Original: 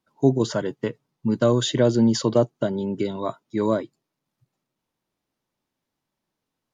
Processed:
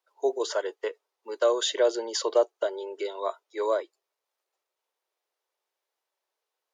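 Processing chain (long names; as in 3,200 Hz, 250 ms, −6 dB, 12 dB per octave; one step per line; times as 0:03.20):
Butterworth high-pass 400 Hz 48 dB per octave
level −1.5 dB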